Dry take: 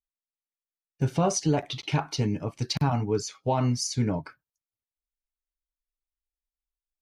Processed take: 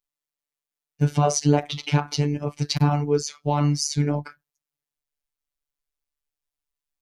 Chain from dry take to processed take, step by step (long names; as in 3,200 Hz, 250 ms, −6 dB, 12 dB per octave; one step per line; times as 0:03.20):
phases set to zero 146 Hz
level +6 dB